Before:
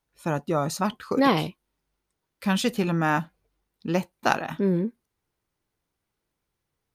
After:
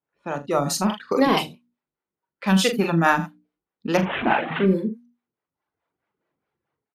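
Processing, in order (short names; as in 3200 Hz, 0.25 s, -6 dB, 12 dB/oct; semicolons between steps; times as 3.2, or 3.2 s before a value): 3.97–4.66 delta modulation 16 kbps, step -23 dBFS; HPF 160 Hz 12 dB/oct; soft clip -8.5 dBFS, distortion -26 dB; AGC gain up to 10 dB; low-pass opened by the level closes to 1900 Hz, open at -16 dBFS; reverb removal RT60 1 s; notches 60/120/180/240/300 Hz; early reflections 42 ms -6.5 dB, 79 ms -13 dB; harmonic tremolo 4.7 Hz, depth 70%, crossover 420 Hz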